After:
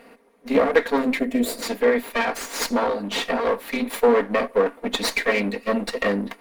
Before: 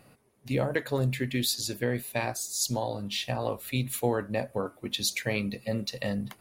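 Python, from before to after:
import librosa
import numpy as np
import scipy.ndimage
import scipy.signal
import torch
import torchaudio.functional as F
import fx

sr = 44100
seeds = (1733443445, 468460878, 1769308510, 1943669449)

y = fx.lower_of_two(x, sr, delay_ms=4.3)
y = fx.spec_box(y, sr, start_s=1.19, length_s=0.43, low_hz=720.0, high_hz=6800.0, gain_db=-10)
y = fx.graphic_eq_10(y, sr, hz=(125, 250, 500, 1000, 2000, 4000), db=(-12, 12, 11, 8, 11, 4))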